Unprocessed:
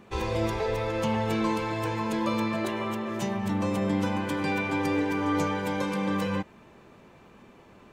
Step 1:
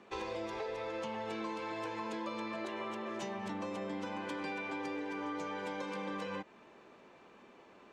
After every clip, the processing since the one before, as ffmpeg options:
-filter_complex "[0:a]acrossover=split=240 7900:gain=0.158 1 0.0891[a][b][c];[a][b][c]amix=inputs=3:normalize=0,acompressor=threshold=-33dB:ratio=6,volume=-3.5dB"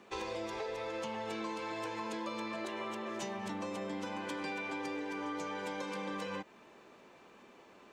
-af "highshelf=f=6k:g=9.5"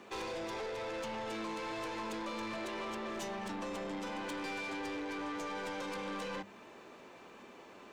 -af "aeval=exprs='(tanh(112*val(0)+0.1)-tanh(0.1))/112':c=same,bandreject=f=50:t=h:w=6,bandreject=f=100:t=h:w=6,bandreject=f=150:t=h:w=6,bandreject=f=200:t=h:w=6,volume=4.5dB"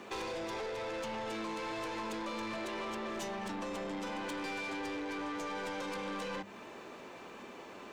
-af "acompressor=threshold=-44dB:ratio=2.5,volume=5dB"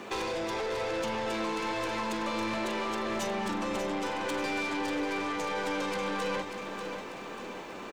-af "aecho=1:1:590|1180|1770|2360|2950|3540:0.398|0.203|0.104|0.0528|0.0269|0.0137,volume=6dB"

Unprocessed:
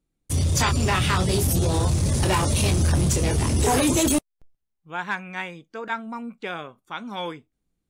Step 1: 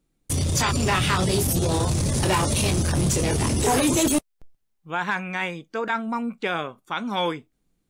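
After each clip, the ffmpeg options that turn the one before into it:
-af "alimiter=limit=-21dB:level=0:latency=1:release=11,equalizer=f=69:w=1.6:g=-7,volume=6.5dB"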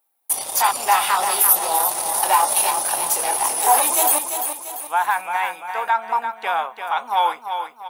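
-filter_complex "[0:a]highpass=f=820:t=q:w=4.9,aexciter=amount=9.7:drive=2.2:freq=9.9k,asplit=2[a][b];[b]aecho=0:1:343|686|1029|1372|1715:0.422|0.19|0.0854|0.0384|0.0173[c];[a][c]amix=inputs=2:normalize=0,volume=-1dB"

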